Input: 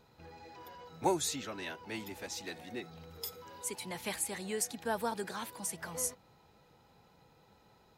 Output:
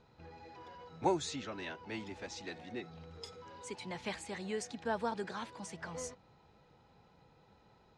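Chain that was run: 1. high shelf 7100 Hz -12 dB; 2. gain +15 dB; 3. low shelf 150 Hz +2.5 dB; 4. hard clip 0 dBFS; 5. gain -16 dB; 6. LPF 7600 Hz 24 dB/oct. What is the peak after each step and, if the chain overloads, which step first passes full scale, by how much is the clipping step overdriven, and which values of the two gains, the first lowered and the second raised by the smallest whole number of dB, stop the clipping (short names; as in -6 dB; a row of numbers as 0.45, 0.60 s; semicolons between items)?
-17.5, -2.5, -2.0, -2.0, -18.0, -18.0 dBFS; no overload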